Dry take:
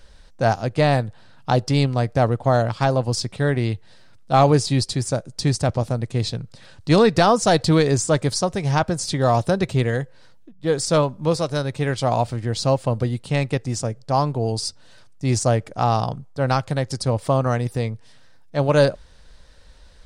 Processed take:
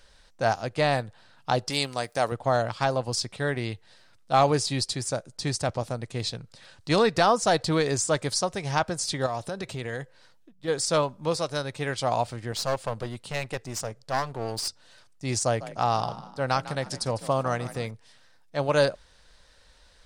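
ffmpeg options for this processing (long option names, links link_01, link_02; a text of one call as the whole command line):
ffmpeg -i in.wav -filter_complex "[0:a]asettb=1/sr,asplit=3[link_01][link_02][link_03];[link_01]atrim=end=1.704[link_04];[link_02]atrim=start=1.7:end=2.32,asetpts=PTS-STARTPTS,afade=type=in:duration=0.004:curve=qsin,afade=type=out:start_time=0.616:duration=0.004:curve=qsin,aemphasis=mode=production:type=bsi[link_05];[link_03]atrim=start=2.316[link_06];[link_04][link_05]acrossfade=duration=0.004:curve1=hsin:curve2=qsin[link_07];[link_07][link_06]acrossfade=duration=0.004:curve1=qsin:curve2=hsin,asettb=1/sr,asplit=3[link_08][link_09][link_10];[link_08]atrim=end=5.374[link_11];[link_09]atrim=start=5.37:end=7.83,asetpts=PTS-STARTPTS,afade=type=in:duration=0.004:curve=qsin,afade=type=out:start_time=2.456:duration=0.004:curve=qsin,adynamicequalizer=threshold=0.0355:dfrequency=2000:dqfactor=0.7:tfrequency=2000:tqfactor=0.7:attack=5:release=100:ratio=0.375:range=2:mode=cutabove:tftype=highshelf[link_12];[link_10]atrim=start=7.826[link_13];[link_11][link_12]acrossfade=duration=0.004:curve1=hsin:curve2=qsin[link_14];[link_14][link_13]acrossfade=duration=0.004:curve1=qsin:curve2=hsin,asettb=1/sr,asplit=3[link_15][link_16][link_17];[link_15]atrim=end=9.264[link_18];[link_16]atrim=start=9.26:end=10.68,asetpts=PTS-STARTPTS,afade=type=in:duration=0.004:curve=qsin,afade=type=out:start_time=1.416:duration=0.004:curve=qsin,acompressor=threshold=-21dB:ratio=6:attack=3.2:release=140:knee=1:detection=peak[link_19];[link_17]atrim=start=10.676[link_20];[link_18][link_19]acrossfade=duration=0.004:curve1=hsin:curve2=qsin[link_21];[link_21][link_20]acrossfade=duration=0.004:curve1=qsin:curve2=hsin,asettb=1/sr,asplit=3[link_22][link_23][link_24];[link_22]atrim=end=12.524[link_25];[link_23]atrim=start=12.52:end=14.68,asetpts=PTS-STARTPTS,afade=type=in:duration=0.004:curve=qsin,afade=type=out:start_time=2.156:duration=0.004:curve=qsin,aeval=exprs='clip(val(0),-1,0.0335)':channel_layout=same[link_26];[link_24]atrim=start=14.676[link_27];[link_25][link_26]acrossfade=duration=0.004:curve1=hsin:curve2=qsin[link_28];[link_28][link_27]acrossfade=duration=0.004:curve1=qsin:curve2=hsin,asettb=1/sr,asplit=3[link_29][link_30][link_31];[link_29]atrim=end=15.454[link_32];[link_30]atrim=start=15.45:end=17.91,asetpts=PTS-STARTPTS,afade=type=in:duration=0.004:curve=qsin,afade=type=out:start_time=2.456:duration=0.004:curve=qsin,asplit=5[link_33][link_34][link_35][link_36][link_37];[link_34]adelay=151,afreqshift=41,volume=-15dB[link_38];[link_35]adelay=302,afreqshift=82,volume=-23.2dB[link_39];[link_36]adelay=453,afreqshift=123,volume=-31.4dB[link_40];[link_37]adelay=604,afreqshift=164,volume=-39.5dB[link_41];[link_33][link_38][link_39][link_40][link_41]amix=inputs=5:normalize=0,atrim=end_sample=108486[link_42];[link_31]atrim=start=17.906[link_43];[link_32][link_42]acrossfade=duration=0.004:curve1=hsin:curve2=qsin[link_44];[link_44][link_43]acrossfade=duration=0.004:curve1=qsin:curve2=hsin,lowshelf=frequency=420:gain=-9.5,volume=-2dB" out.wav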